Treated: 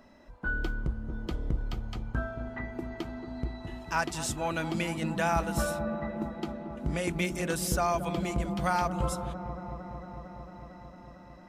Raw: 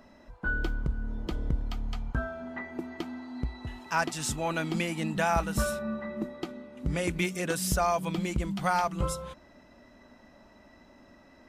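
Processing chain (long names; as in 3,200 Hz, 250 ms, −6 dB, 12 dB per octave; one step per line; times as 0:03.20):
delay with a low-pass on its return 226 ms, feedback 82%, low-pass 860 Hz, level −9 dB
level −1.5 dB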